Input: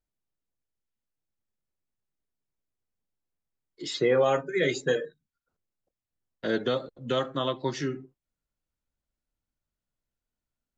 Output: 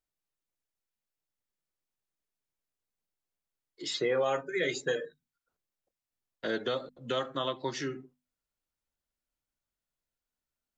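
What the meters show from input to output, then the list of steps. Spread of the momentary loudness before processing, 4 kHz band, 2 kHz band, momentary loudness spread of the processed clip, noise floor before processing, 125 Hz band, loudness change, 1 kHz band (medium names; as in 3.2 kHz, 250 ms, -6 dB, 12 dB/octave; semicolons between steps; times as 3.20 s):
13 LU, -2.0 dB, -3.0 dB, 10 LU, under -85 dBFS, -8.5 dB, -5.0 dB, -4.0 dB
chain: bass shelf 360 Hz -7 dB; hum notches 50/100/150/200/250 Hz; compression 1.5:1, threshold -31 dBFS, peak gain reduction 4 dB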